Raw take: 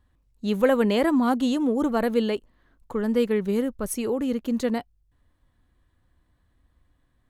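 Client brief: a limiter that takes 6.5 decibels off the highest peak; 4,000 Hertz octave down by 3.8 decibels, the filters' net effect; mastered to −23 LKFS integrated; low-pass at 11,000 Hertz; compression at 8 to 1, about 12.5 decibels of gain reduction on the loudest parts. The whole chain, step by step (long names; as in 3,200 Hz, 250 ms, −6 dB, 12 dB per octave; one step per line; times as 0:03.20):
low-pass filter 11,000 Hz
parametric band 4,000 Hz −5.5 dB
downward compressor 8 to 1, threshold −28 dBFS
level +11 dB
brickwall limiter −13.5 dBFS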